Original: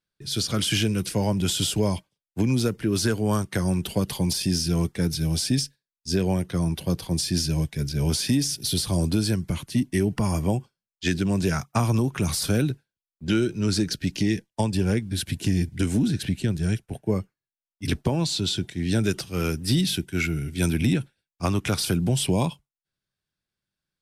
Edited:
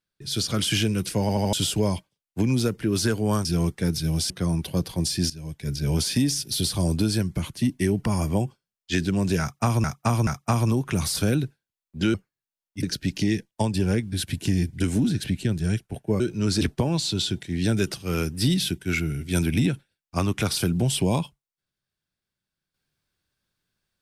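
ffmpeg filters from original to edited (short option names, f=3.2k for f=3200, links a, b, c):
-filter_complex "[0:a]asplit=14[a][b][c][d][e][f][g][h][i][j][k][l][m][n];[a]atrim=end=1.292[o];[b]atrim=start=1.208:end=1.292[p];[c]atrim=start=1.208:end=1.292[q];[d]atrim=start=1.208:end=1.292[r];[e]atrim=start=1.528:end=3.452[s];[f]atrim=start=4.618:end=5.472[t];[g]atrim=start=6.428:end=7.43,asetpts=PTS-STARTPTS,afade=t=out:st=0.998:d=0.004:c=hsin:silence=0.16788[u];[h]atrim=start=7.43:end=11.972,asetpts=PTS-STARTPTS,afade=t=in:d=0.43:c=qua:silence=0.16788[v];[i]atrim=start=11.538:end=11.972[w];[j]atrim=start=11.538:end=13.412[x];[k]atrim=start=17.188:end=17.882[y];[l]atrim=start=13.818:end=17.192[z];[m]atrim=start=13.408:end=13.822[aa];[n]atrim=start=17.878[ab];[o][p]acrossfade=d=0.004:c1=hsin:c2=hsin[ac];[ac][q]acrossfade=d=0.004:c1=hsin:c2=hsin[ad];[ad][r]acrossfade=d=0.004:c1=hsin:c2=hsin[ae];[ae][s]acrossfade=d=0.004:c1=hsin:c2=hsin[af];[af][t]acrossfade=d=0.004:c1=hsin:c2=hsin[ag];[u][v]concat=n=2:v=0:a=1[ah];[ag][ah]acrossfade=d=0.004:c1=hsin:c2=hsin[ai];[ai][w]acrossfade=d=0.004:c1=hsin:c2=hsin[aj];[aj][x]acrossfade=d=0.004:c1=hsin:c2=hsin[ak];[ak][y]acrossfade=d=0.004:c1=hsin:c2=hsin[al];[al][z]acrossfade=d=0.004:c1=hsin:c2=hsin[am];[am][aa]acrossfade=d=0.004:c1=hsin:c2=hsin[an];[an][ab]acrossfade=d=0.004:c1=hsin:c2=hsin"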